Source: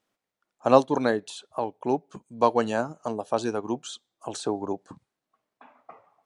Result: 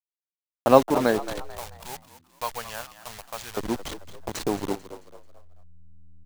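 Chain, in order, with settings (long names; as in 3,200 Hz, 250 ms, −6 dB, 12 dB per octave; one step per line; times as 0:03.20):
hold until the input has moved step −29 dBFS
0:01.50–0:03.57: guitar amp tone stack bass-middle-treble 10-0-10
upward compression, threshold −40 dBFS
echo with shifted repeats 220 ms, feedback 40%, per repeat +82 Hz, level −14 dB
level +2 dB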